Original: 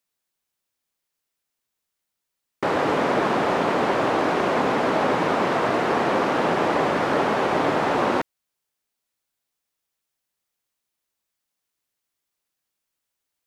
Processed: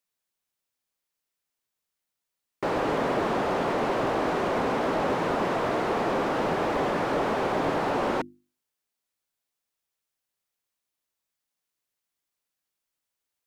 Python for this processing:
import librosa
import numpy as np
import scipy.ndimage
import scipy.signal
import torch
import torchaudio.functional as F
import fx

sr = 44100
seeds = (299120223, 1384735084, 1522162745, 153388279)

y = fx.hum_notches(x, sr, base_hz=50, count=7)
y = fx.slew_limit(y, sr, full_power_hz=81.0)
y = F.gain(torch.from_numpy(y), -3.5).numpy()